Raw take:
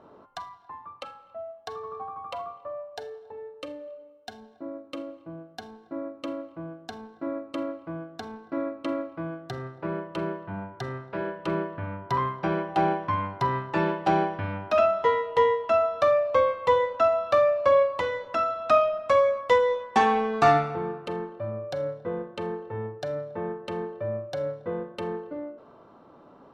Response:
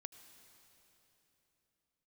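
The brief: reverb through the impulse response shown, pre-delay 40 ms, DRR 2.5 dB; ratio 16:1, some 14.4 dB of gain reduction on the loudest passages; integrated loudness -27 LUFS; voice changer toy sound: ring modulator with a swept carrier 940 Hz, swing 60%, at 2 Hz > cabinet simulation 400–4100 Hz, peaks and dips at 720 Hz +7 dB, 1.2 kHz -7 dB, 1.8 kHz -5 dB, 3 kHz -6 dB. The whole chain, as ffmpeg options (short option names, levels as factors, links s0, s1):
-filter_complex "[0:a]acompressor=threshold=0.0316:ratio=16,asplit=2[s0][s1];[1:a]atrim=start_sample=2205,adelay=40[s2];[s1][s2]afir=irnorm=-1:irlink=0,volume=1.41[s3];[s0][s3]amix=inputs=2:normalize=0,aeval=exprs='val(0)*sin(2*PI*940*n/s+940*0.6/2*sin(2*PI*2*n/s))':c=same,highpass=400,equalizer=f=720:t=q:w=4:g=7,equalizer=f=1200:t=q:w=4:g=-7,equalizer=f=1800:t=q:w=4:g=-5,equalizer=f=3000:t=q:w=4:g=-6,lowpass=f=4100:w=0.5412,lowpass=f=4100:w=1.3066,volume=3.98"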